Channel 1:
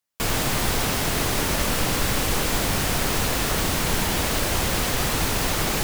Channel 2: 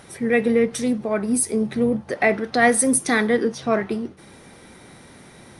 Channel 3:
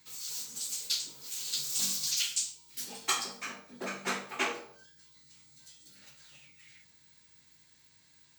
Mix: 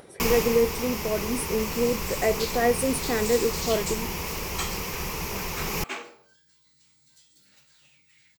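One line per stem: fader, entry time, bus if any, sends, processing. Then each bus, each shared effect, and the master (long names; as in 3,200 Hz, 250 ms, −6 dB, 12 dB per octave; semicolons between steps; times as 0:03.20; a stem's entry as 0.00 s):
+2.5 dB, 0.00 s, no send, EQ curve with evenly spaced ripples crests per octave 0.79, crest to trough 10 dB; automatic ducking −12 dB, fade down 0.65 s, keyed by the second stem
−12.5 dB, 0.00 s, no send, parametric band 460 Hz +11 dB 1.4 octaves; upward compression, threshold −32 dBFS
−3.5 dB, 1.50 s, no send, no processing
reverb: not used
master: notch filter 6,200 Hz, Q 29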